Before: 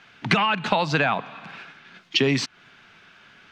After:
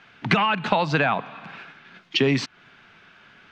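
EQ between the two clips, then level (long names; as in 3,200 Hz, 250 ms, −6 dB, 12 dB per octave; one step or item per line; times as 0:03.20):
high-shelf EQ 5,000 Hz −9.5 dB
+1.0 dB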